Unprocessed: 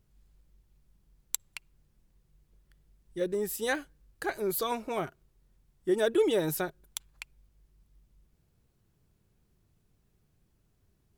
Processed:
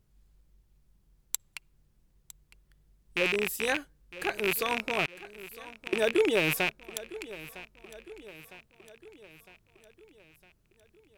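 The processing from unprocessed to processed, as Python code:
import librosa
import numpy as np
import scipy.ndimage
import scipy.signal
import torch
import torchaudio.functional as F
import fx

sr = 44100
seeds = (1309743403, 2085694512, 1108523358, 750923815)

y = fx.rattle_buzz(x, sr, strikes_db=-46.0, level_db=-16.0)
y = fx.gate_flip(y, sr, shuts_db=-22.0, range_db=-26, at=(5.05, 5.93))
y = fx.echo_feedback(y, sr, ms=957, feedback_pct=55, wet_db=-17)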